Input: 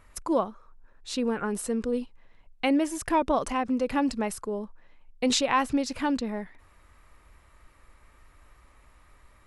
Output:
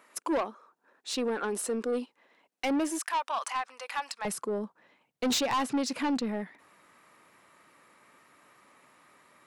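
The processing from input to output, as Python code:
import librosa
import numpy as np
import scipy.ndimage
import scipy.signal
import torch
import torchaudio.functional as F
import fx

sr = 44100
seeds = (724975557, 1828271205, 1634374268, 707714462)

y = fx.highpass(x, sr, hz=fx.steps((0.0, 260.0), (2.99, 870.0), (4.25, 170.0)), slope=24)
y = 10.0 ** (-26.0 / 20.0) * np.tanh(y / 10.0 ** (-26.0 / 20.0))
y = F.gain(torch.from_numpy(y), 2.0).numpy()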